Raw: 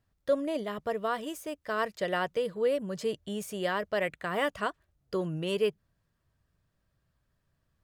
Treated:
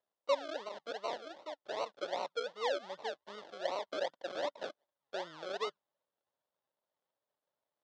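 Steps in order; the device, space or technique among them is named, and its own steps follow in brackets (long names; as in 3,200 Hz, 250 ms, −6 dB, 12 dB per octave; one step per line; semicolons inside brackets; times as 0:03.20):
circuit-bent sampling toy (sample-and-hold swept by an LFO 37×, swing 60% 2.6 Hz; loudspeaker in its box 540–5,300 Hz, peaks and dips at 580 Hz +7 dB, 920 Hz +4 dB, 2,400 Hz −7 dB, 3,500 Hz +5 dB)
level −7.5 dB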